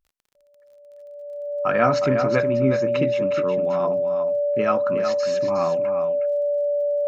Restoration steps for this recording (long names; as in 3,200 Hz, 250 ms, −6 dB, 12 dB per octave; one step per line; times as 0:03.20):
click removal
notch filter 580 Hz, Q 30
echo removal 364 ms −7.5 dB